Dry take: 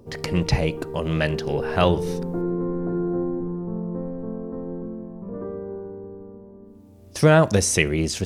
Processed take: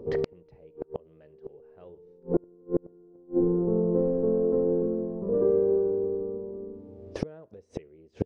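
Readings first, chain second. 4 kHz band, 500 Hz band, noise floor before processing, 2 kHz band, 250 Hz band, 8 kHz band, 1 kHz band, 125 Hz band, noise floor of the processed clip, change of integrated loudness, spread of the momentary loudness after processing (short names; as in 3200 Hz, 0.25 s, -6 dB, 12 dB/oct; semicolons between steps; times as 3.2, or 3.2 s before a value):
under -20 dB, -1.5 dB, -47 dBFS, under -20 dB, -5.0 dB, under -30 dB, -18.0 dB, -12.0 dB, -58 dBFS, -4.0 dB, 18 LU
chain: bell 440 Hz +14.5 dB 0.9 oct; flipped gate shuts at -10 dBFS, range -36 dB; tape spacing loss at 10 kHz 29 dB; gain -1 dB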